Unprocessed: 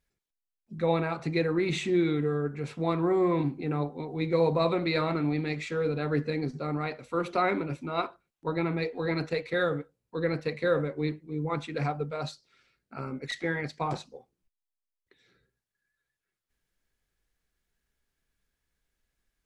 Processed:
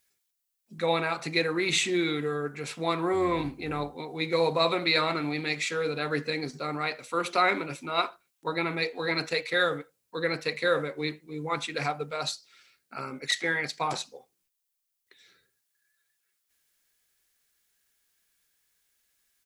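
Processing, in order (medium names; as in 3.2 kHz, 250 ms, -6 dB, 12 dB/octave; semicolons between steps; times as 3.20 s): 3.13–3.96 s: octave divider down 2 oct, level -6 dB; tilt EQ +3.5 dB/octave; speakerphone echo 80 ms, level -28 dB; trim +3 dB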